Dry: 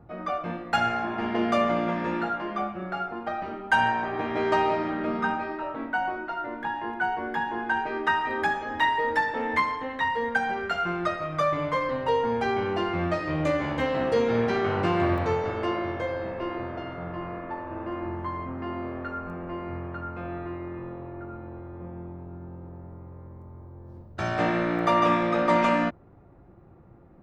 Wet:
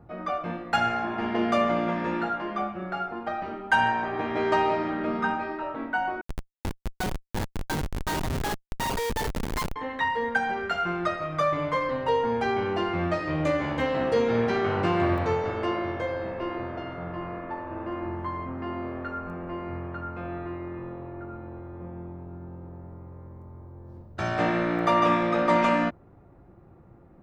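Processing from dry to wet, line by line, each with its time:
0:06.21–0:09.76: comparator with hysteresis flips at −23 dBFS

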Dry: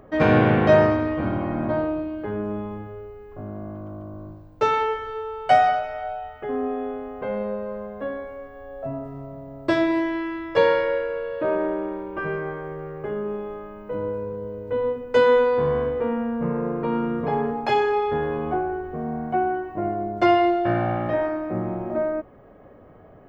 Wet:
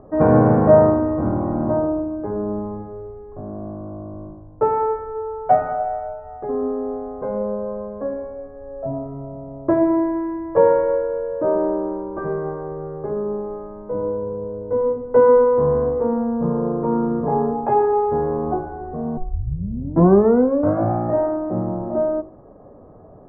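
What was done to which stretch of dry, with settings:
0:19.17: tape start 1.73 s
whole clip: low-pass filter 1,100 Hz 24 dB per octave; hum removal 52.78 Hz, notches 29; level +4.5 dB

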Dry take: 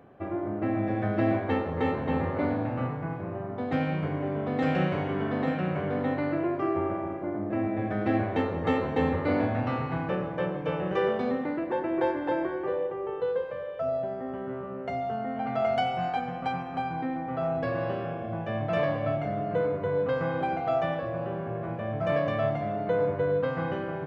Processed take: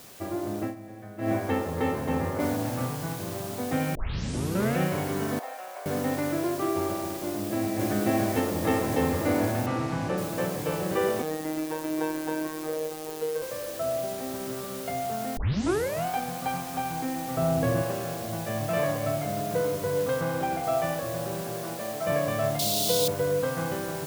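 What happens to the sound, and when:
0:00.61–0:01.32: duck −15 dB, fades 0.14 s
0:02.40: noise floor change −49 dB −42 dB
0:03.95: tape start 0.85 s
0:05.39–0:05.86: four-pole ladder high-pass 600 Hz, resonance 50%
0:07.23–0:07.83: delay throw 560 ms, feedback 80%, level −0.5 dB
0:09.66–0:10.18: high-frequency loss of the air 71 metres
0:11.22–0:13.42: phases set to zero 156 Hz
0:15.37: tape start 0.69 s
0:17.37–0:17.82: low-shelf EQ 360 Hz +9.5 dB
0:20.21–0:20.64: bass and treble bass +1 dB, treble −3 dB
0:21.42–0:22.05: high-pass filter 130 Hz → 320 Hz
0:22.59–0:23.08: high shelf with overshoot 2,600 Hz +13 dB, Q 3

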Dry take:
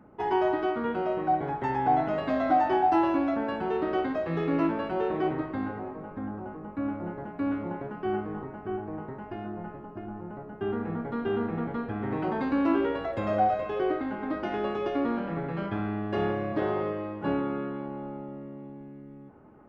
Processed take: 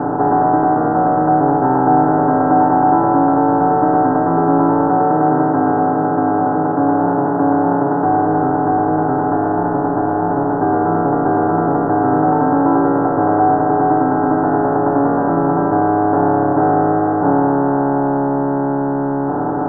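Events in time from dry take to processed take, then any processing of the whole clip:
0:04.89–0:08.04: high-pass filter 140 Hz 24 dB per octave
whole clip: compressor on every frequency bin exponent 0.2; Butterworth low-pass 1,600 Hz 72 dB per octave; comb filter 6.9 ms, depth 90%; level +2.5 dB

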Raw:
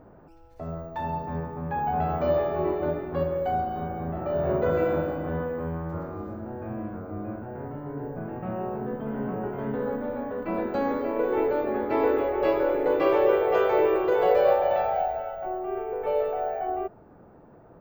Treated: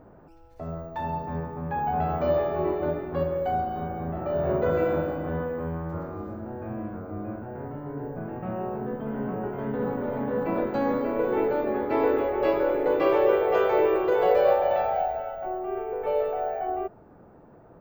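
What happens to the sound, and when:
0:09.25–0:10.11: delay throw 540 ms, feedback 65%, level −2.5 dB

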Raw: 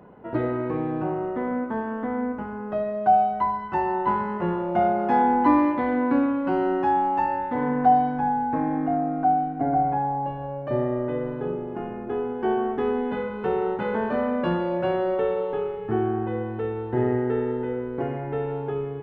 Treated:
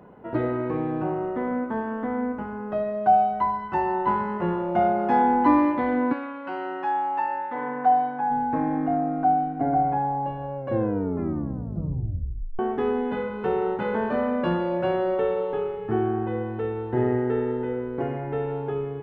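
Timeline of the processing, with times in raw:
0:06.12–0:08.30: resonant band-pass 2,700 Hz → 1,100 Hz, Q 0.55
0:10.57: tape stop 2.02 s

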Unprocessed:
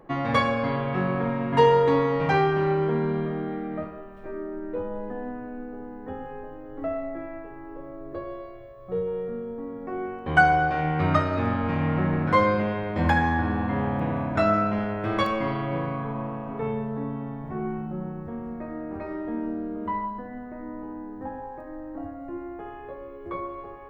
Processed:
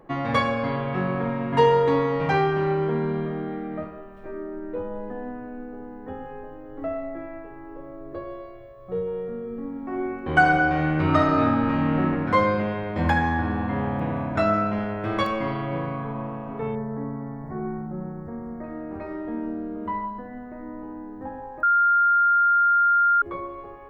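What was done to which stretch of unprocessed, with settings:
0:09.40–0:12.03: thrown reverb, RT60 1.3 s, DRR 1 dB
0:16.75–0:18.64: elliptic band-stop filter 2,100–4,500 Hz, stop band 50 dB
0:21.63–0:23.22: beep over 1,400 Hz −15.5 dBFS

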